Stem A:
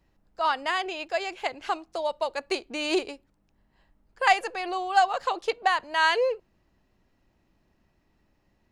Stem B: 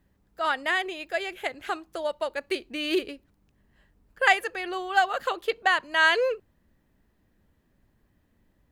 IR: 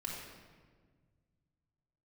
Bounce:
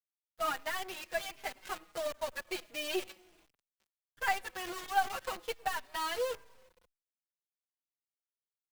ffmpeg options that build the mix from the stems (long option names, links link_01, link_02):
-filter_complex "[0:a]volume=-12dB,asplit=2[link_01][link_02];[link_02]volume=-20dB[link_03];[1:a]highpass=560,acompressor=threshold=-26dB:ratio=16,aeval=exprs='(tanh(11.2*val(0)+0.7)-tanh(0.7))/11.2':channel_layout=same,adelay=6.1,volume=-1.5dB,asplit=2[link_04][link_05];[link_05]volume=-14dB[link_06];[2:a]atrim=start_sample=2205[link_07];[link_03][link_06]amix=inputs=2:normalize=0[link_08];[link_08][link_07]afir=irnorm=-1:irlink=0[link_09];[link_01][link_04][link_09]amix=inputs=3:normalize=0,acrusher=bits=7:dc=4:mix=0:aa=0.000001,asplit=2[link_10][link_11];[link_11]adelay=4.6,afreqshift=-1.4[link_12];[link_10][link_12]amix=inputs=2:normalize=1"